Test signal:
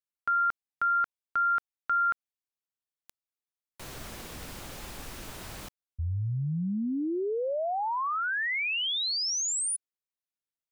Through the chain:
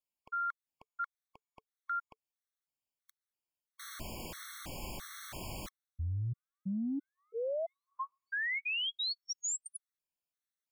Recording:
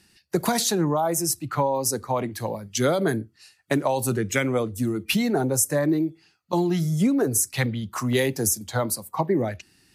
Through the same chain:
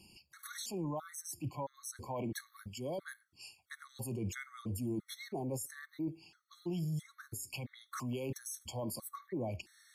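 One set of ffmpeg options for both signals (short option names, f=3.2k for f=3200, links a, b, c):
-af "areverse,acompressor=threshold=-34dB:ratio=16:attack=9.7:release=58:knee=1:detection=peak,areverse,bandreject=f=440:w=12,alimiter=level_in=6.5dB:limit=-24dB:level=0:latency=1:release=183,volume=-6.5dB,afftfilt=real='re*gt(sin(2*PI*1.5*pts/sr)*(1-2*mod(floor(b*sr/1024/1100),2)),0)':imag='im*gt(sin(2*PI*1.5*pts/sr)*(1-2*mod(floor(b*sr/1024/1100),2)),0)':win_size=1024:overlap=0.75,volume=1dB"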